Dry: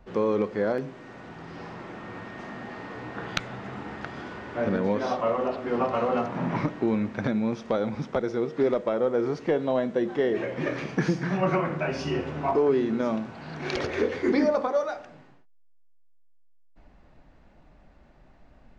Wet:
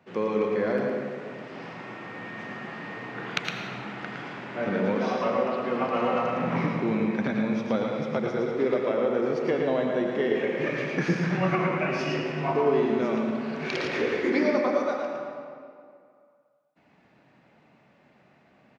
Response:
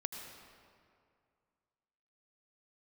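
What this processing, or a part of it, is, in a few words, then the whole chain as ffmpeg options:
PA in a hall: -filter_complex "[0:a]highpass=frequency=120:width=0.5412,highpass=frequency=120:width=1.3066,equalizer=frequency=2400:width_type=o:width=0.92:gain=6,aecho=1:1:112:0.531[link_01];[1:a]atrim=start_sample=2205[link_02];[link_01][link_02]afir=irnorm=-1:irlink=0,volume=-1dB"

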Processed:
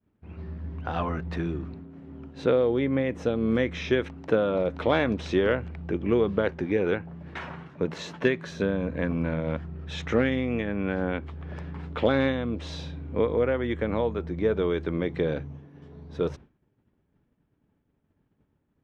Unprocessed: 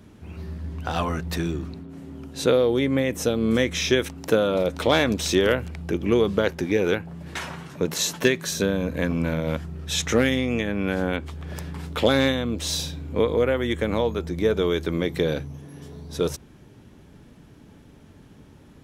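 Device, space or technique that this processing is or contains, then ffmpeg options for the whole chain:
hearing-loss simulation: -af "lowpass=2300,agate=range=-33dB:threshold=-36dB:ratio=3:detection=peak,volume=-3dB"

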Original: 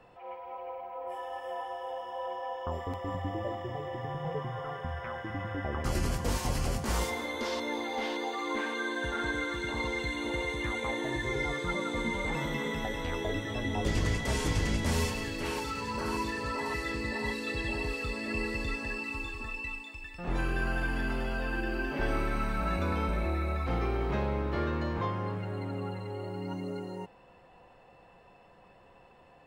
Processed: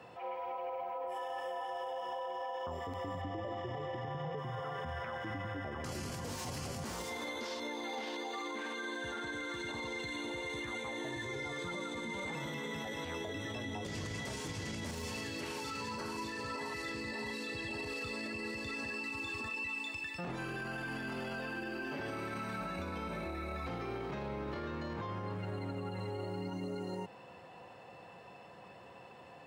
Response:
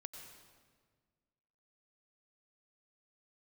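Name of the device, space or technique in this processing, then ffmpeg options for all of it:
broadcast voice chain: -filter_complex "[0:a]asettb=1/sr,asplit=3[link_01][link_02][link_03];[link_01]atrim=end=3.214[link_04];[link_02]atrim=start=3.21:end=4.38,asetpts=PTS-STARTPTS,afade=type=in:duration=0.004:curve=qsin,afade=type=out:start_time=1.166:duration=0.004:curve=qsin,lowpass=6000[link_05];[link_03]atrim=start=4.376[link_06];[link_04][link_05]acrossfade=duration=0.004:curve1=hsin:curve2=qsin[link_07];[link_07][link_06]acrossfade=duration=0.004:curve1=qsin:curve2=hsin,highpass=frequency=88:width=0.5412,highpass=frequency=88:width=1.3066,deesser=0.85,acompressor=threshold=-38dB:ratio=6,equalizer=frequency=5500:width_type=o:width=1.6:gain=4,alimiter=level_in=12dB:limit=-24dB:level=0:latency=1:release=30,volume=-12dB,volume=4dB"

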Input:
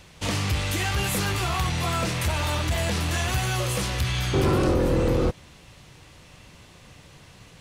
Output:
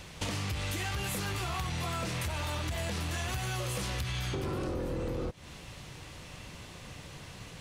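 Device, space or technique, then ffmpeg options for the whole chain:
serial compression, peaks first: -af "acompressor=threshold=-30dB:ratio=6,acompressor=threshold=-36dB:ratio=2.5,volume=2.5dB"

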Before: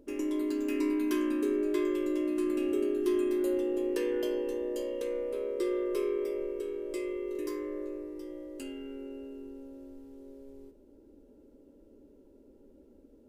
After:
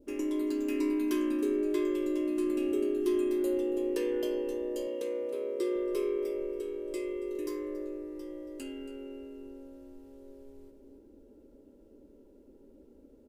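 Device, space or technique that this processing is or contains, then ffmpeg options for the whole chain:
ducked delay: -filter_complex "[0:a]asplit=3[link_01][link_02][link_03];[link_02]adelay=278,volume=-7.5dB[link_04];[link_03]apad=whole_len=598170[link_05];[link_04][link_05]sidechaincompress=threshold=-45dB:ratio=8:attack=16:release=390[link_06];[link_01][link_06]amix=inputs=2:normalize=0,asettb=1/sr,asplit=3[link_07][link_08][link_09];[link_07]atrim=end=4.874[link_10];[link_08]atrim=start=4.87:end=5.76,asetpts=PTS-STARTPTS,afade=type=in:duration=0.004:curve=qsin,afade=type=out:start_time=0.886:duration=0.004:curve=qsin,highpass=frequency=94:width=0.5412,highpass=frequency=94:width=1.3066[link_11];[link_09]atrim=start=5.756[link_12];[link_10][link_11]acrossfade=duration=0.004:curve1=hsin:curve2=qsin[link_13];[link_13][link_12]acrossfade=duration=0.004:curve1=qsin:curve2=hsin,adynamicequalizer=threshold=0.00251:dfrequency=1500:dqfactor=1.3:tfrequency=1500:tqfactor=1.3:attack=5:release=100:ratio=0.375:range=2:mode=cutabove:tftype=bell"

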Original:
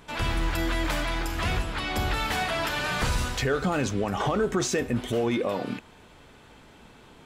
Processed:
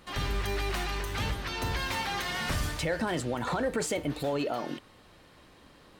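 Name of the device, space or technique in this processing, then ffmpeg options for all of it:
nightcore: -af "asetrate=53361,aresample=44100,volume=-4.5dB"

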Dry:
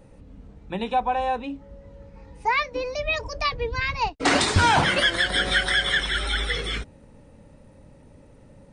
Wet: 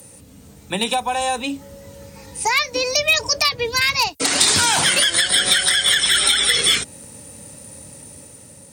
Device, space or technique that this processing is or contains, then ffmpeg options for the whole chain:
FM broadcast chain: -filter_complex "[0:a]highpass=frequency=74:width=0.5412,highpass=frequency=74:width=1.3066,dynaudnorm=framelen=200:gausssize=7:maxgain=4dB,acrossover=split=120|4900[link_01][link_02][link_03];[link_01]acompressor=threshold=-45dB:ratio=4[link_04];[link_02]acompressor=threshold=-23dB:ratio=4[link_05];[link_03]acompressor=threshold=-46dB:ratio=4[link_06];[link_04][link_05][link_06]amix=inputs=3:normalize=0,aemphasis=mode=production:type=75fm,alimiter=limit=-14dB:level=0:latency=1:release=218,asoftclip=type=hard:threshold=-16.5dB,lowpass=frequency=15000:width=0.5412,lowpass=frequency=15000:width=1.3066,aemphasis=mode=production:type=75fm,volume=4.5dB"

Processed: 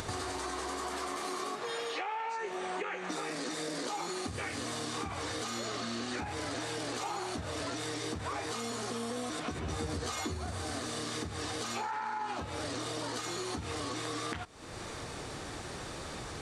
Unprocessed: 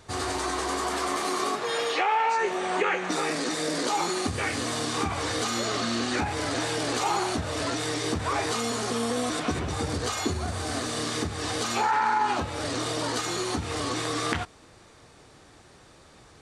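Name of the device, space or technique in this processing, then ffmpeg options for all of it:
upward and downward compression: -filter_complex "[0:a]acompressor=mode=upward:threshold=-30dB:ratio=2.5,acompressor=threshold=-35dB:ratio=5,asettb=1/sr,asplit=3[link_01][link_02][link_03];[link_01]atrim=end=9.614[link_04];[link_02]atrim=start=9.61:end=10.35,asetpts=PTS-STARTPTS,afade=type=in:duration=0.004:curve=qsin,afade=type=out:start_time=0.736:duration=0.004:curve=qsin,asplit=2[link_05][link_06];[link_06]adelay=13,volume=-5dB[link_07];[link_05][link_07]amix=inputs=2:normalize=0,atrim=end_sample=32634[link_08];[link_03]atrim=start=10.346[link_09];[link_04][link_08]acrossfade=duration=0.004:curve1=hsin:curve2=qsin[link_10];[link_10][link_09]acrossfade=duration=0.004:curve1=qsin:curve2=hsin"

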